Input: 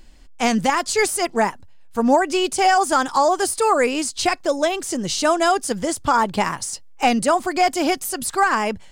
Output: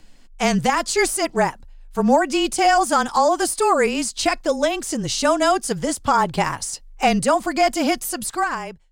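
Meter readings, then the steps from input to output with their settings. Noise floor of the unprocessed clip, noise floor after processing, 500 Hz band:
-41 dBFS, -45 dBFS, 0.0 dB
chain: fade out at the end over 0.79 s; frequency shift -26 Hz

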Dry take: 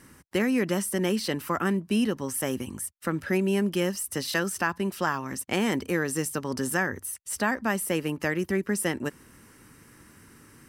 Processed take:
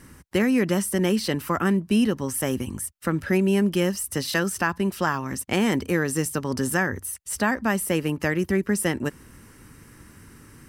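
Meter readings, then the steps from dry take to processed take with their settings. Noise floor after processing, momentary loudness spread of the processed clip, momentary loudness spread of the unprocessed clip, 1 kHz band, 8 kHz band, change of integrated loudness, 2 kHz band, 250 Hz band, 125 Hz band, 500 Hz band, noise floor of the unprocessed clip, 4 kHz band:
-50 dBFS, 7 LU, 7 LU, +2.5 dB, +2.5 dB, +3.5 dB, +2.5 dB, +4.5 dB, +5.5 dB, +3.0 dB, -55 dBFS, +2.5 dB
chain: bass shelf 110 Hz +10 dB; trim +2.5 dB

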